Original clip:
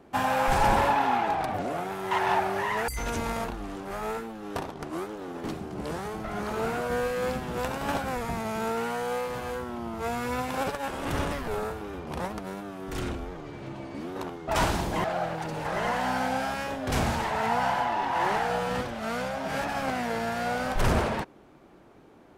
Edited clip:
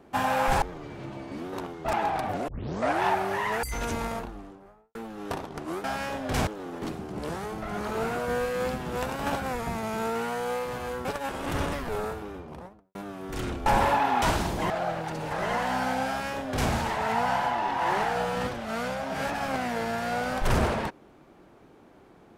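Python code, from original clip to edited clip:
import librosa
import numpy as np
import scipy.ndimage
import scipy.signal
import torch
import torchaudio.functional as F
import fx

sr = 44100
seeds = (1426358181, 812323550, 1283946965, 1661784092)

y = fx.studio_fade_out(x, sr, start_s=3.14, length_s=1.06)
y = fx.studio_fade_out(y, sr, start_s=11.69, length_s=0.85)
y = fx.edit(y, sr, fx.swap(start_s=0.62, length_s=0.56, other_s=13.25, other_length_s=1.31),
    fx.tape_start(start_s=1.73, length_s=0.55),
    fx.cut(start_s=9.67, length_s=0.97),
    fx.duplicate(start_s=16.42, length_s=0.63, to_s=5.09), tone=tone)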